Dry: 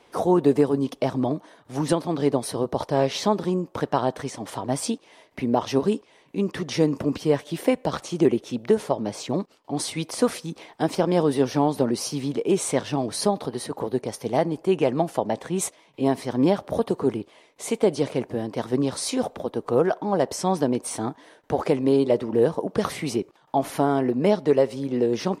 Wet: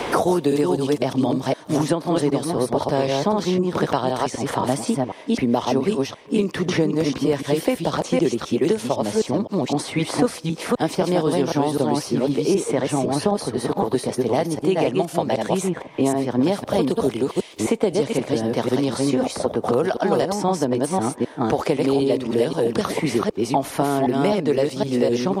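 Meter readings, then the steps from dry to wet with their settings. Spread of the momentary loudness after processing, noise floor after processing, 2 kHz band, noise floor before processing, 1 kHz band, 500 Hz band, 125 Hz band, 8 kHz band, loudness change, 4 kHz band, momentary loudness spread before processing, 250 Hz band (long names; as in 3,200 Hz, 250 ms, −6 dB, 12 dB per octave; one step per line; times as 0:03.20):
3 LU, −39 dBFS, +5.0 dB, −57 dBFS, +3.5 dB, +2.5 dB, +3.5 dB, +1.0 dB, +3.0 dB, +4.0 dB, 9 LU, +3.5 dB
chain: delay that plays each chunk backwards 256 ms, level −2.5 dB
multiband upward and downward compressor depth 100%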